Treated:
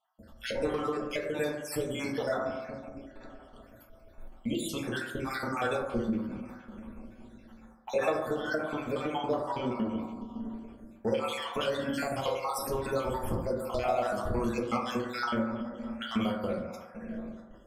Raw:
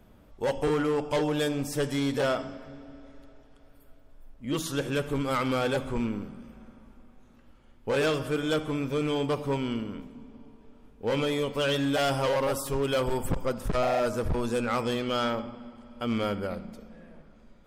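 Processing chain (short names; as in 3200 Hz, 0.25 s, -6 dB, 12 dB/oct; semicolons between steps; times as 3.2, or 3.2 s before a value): random spectral dropouts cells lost 61%; 7.95–10.08 bell 760 Hz +9.5 dB 1.1 oct; gate with hold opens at -52 dBFS; low shelf 180 Hz -4 dB; compressor 2.5:1, threshold -42 dBFS, peak gain reduction 14.5 dB; reverb RT60 1.1 s, pre-delay 5 ms, DRR -2.5 dB; ending taper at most 120 dB/s; gain +6 dB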